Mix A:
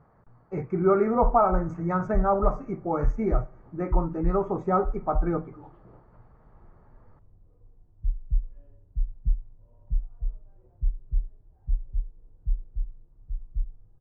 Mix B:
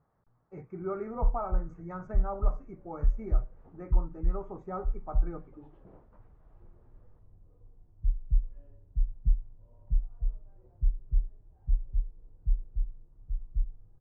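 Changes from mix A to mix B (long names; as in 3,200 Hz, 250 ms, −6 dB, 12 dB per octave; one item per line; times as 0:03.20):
speech −11.5 dB
reverb: off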